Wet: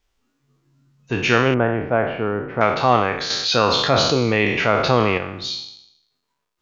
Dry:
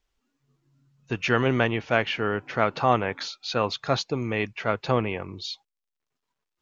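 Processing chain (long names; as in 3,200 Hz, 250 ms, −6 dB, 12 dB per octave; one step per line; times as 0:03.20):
peak hold with a decay on every bin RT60 0.75 s
0:01.54–0:02.61: low-pass filter 1,100 Hz 12 dB per octave
0:03.30–0:05.18: envelope flattener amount 50%
level +4 dB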